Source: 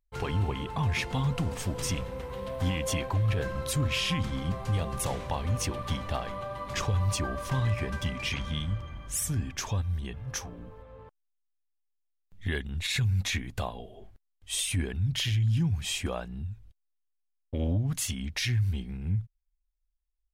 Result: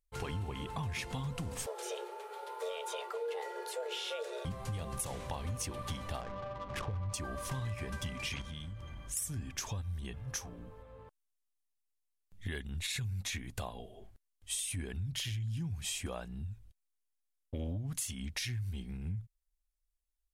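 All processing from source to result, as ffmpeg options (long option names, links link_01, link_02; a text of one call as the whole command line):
ffmpeg -i in.wav -filter_complex "[0:a]asettb=1/sr,asplit=3[link_01][link_02][link_03];[link_01]atrim=end=1.664[link_04];[link_02]atrim=start=1.66:end=4.45,asetpts=PTS-STARTPTS,afade=type=in:duration=0.004:curve=qsin,afade=type=out:start_time=2.786:duration=0.004:curve=qsin,acrossover=split=3800[link_05][link_06];[link_06]acompressor=threshold=-42dB:ratio=4:attack=1:release=60[link_07];[link_05][link_07]amix=inputs=2:normalize=0,flanger=delay=4.1:depth=5.3:regen=-72:speed=1.4:shape=sinusoidal,afreqshift=360[link_08];[link_03]atrim=start=4.446[link_09];[link_04][link_08]acrossfade=duration=0.004:curve1=hsin:curve2=qsin[link_10];[link_10][link_09]acrossfade=duration=0.004:curve1=qsin:curve2=hsin,asettb=1/sr,asplit=3[link_11][link_12][link_13];[link_11]atrim=end=6.214[link_14];[link_12]atrim=start=6.21:end=7.14,asetpts=PTS-STARTPTS,afade=type=in:duration=0.004:curve=qsin,afade=type=out:start_time=0.926:duration=0.004:curve=qsin,lowpass=5200,adynamicsmooth=sensitivity=4.5:basefreq=670[link_15];[link_13]atrim=start=7.136[link_16];[link_14][link_15]acrossfade=duration=0.004:curve1=hsin:curve2=qsin[link_17];[link_17][link_16]acrossfade=duration=0.004:curve1=qsin:curve2=hsin,asettb=1/sr,asplit=3[link_18][link_19][link_20];[link_18]atrim=end=8.414[link_21];[link_19]atrim=start=8.41:end=9.17,asetpts=PTS-STARTPTS,afade=type=in:duration=0.004:curve=qsin,afade=type=out:start_time=0.756:duration=0.004:curve=qsin,bandreject=frequency=1200:width=22,acompressor=threshold=-36dB:ratio=5:attack=3.2:release=140:knee=1:detection=peak[link_22];[link_20]atrim=start=9.166[link_23];[link_21][link_22]acrossfade=duration=0.004:curve1=hsin:curve2=qsin[link_24];[link_24][link_23]acrossfade=duration=0.004:curve1=qsin:curve2=hsin,equalizer=frequency=10000:width_type=o:width=1.4:gain=8,acompressor=threshold=-30dB:ratio=6,volume=-4.5dB" out.wav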